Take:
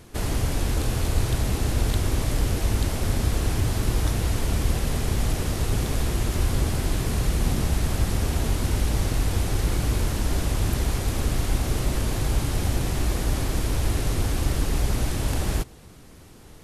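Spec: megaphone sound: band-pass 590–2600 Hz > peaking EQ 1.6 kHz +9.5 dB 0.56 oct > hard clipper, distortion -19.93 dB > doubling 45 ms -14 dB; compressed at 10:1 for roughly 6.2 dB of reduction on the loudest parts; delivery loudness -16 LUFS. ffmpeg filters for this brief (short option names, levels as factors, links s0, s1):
-filter_complex "[0:a]acompressor=threshold=0.0708:ratio=10,highpass=590,lowpass=2600,equalizer=f=1600:t=o:w=0.56:g=9.5,asoftclip=type=hard:threshold=0.0237,asplit=2[s0][s1];[s1]adelay=45,volume=0.2[s2];[s0][s2]amix=inputs=2:normalize=0,volume=13.3"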